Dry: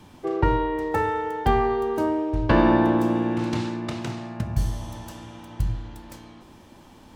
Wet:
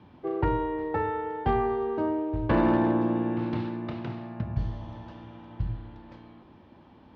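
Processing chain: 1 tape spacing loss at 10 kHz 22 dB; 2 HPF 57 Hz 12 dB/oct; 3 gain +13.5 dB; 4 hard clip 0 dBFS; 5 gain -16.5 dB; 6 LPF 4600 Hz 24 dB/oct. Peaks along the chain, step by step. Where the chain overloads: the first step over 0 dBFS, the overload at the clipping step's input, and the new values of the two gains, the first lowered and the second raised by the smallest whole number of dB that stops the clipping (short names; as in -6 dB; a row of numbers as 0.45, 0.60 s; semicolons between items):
-6.5, -7.5, +6.0, 0.0, -16.5, -16.0 dBFS; step 3, 6.0 dB; step 3 +7.5 dB, step 5 -10.5 dB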